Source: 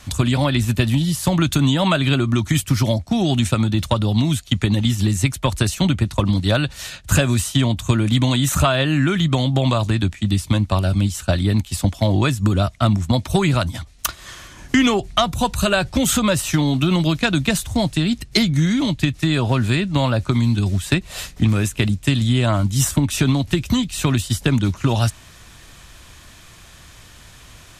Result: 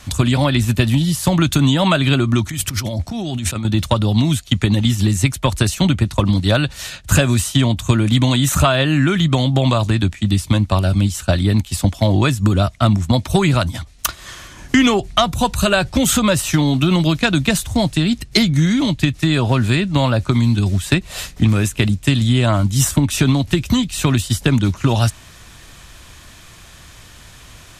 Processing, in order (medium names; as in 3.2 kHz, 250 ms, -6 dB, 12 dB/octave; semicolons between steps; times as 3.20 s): 2.49–3.65 s: compressor with a negative ratio -25 dBFS, ratio -1; trim +2.5 dB